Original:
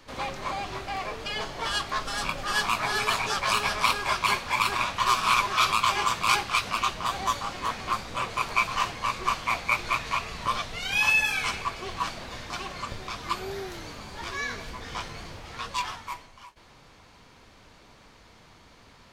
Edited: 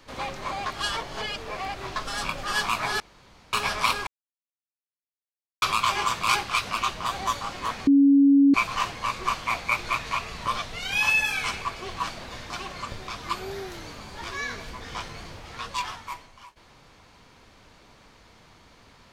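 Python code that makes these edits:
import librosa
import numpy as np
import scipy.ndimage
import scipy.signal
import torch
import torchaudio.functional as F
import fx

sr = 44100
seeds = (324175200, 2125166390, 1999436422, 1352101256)

y = fx.edit(x, sr, fx.reverse_span(start_s=0.66, length_s=1.3),
    fx.room_tone_fill(start_s=3.0, length_s=0.53),
    fx.silence(start_s=4.07, length_s=1.55),
    fx.bleep(start_s=7.87, length_s=0.67, hz=279.0, db=-13.0), tone=tone)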